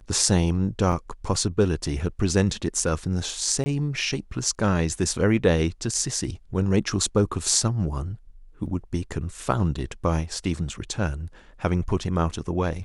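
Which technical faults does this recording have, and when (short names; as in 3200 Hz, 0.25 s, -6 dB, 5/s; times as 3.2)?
0.92 gap 4.9 ms
3.64–3.66 gap 20 ms
8.66 gap 2.6 ms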